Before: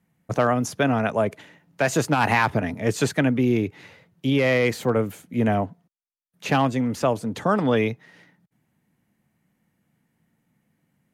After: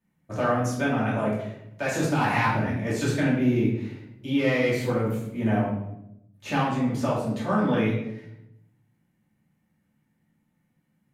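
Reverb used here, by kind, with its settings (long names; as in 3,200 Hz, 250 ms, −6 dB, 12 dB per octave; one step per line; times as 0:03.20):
rectangular room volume 210 cubic metres, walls mixed, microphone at 2.6 metres
level −12 dB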